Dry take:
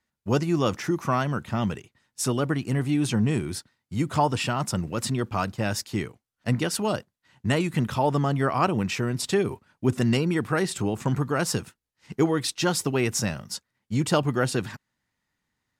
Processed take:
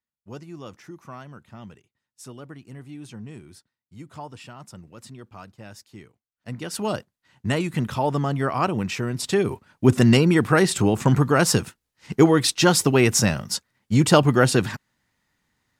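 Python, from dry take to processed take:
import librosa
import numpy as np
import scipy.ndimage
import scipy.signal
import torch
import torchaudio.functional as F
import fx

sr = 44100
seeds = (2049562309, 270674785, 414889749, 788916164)

y = fx.gain(x, sr, db=fx.line((6.02, -15.5), (6.58, -9.0), (6.83, 0.0), (9.16, 0.0), (9.85, 7.0)))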